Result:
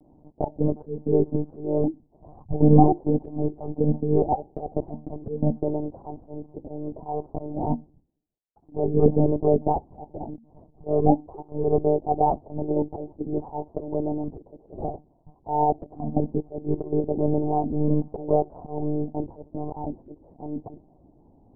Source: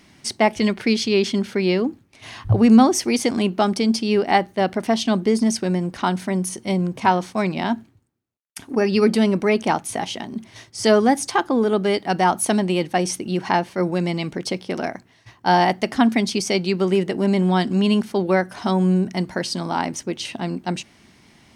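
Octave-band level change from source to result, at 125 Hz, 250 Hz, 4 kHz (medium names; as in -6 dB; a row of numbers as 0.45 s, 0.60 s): -1.5 dB, -6.5 dB, under -40 dB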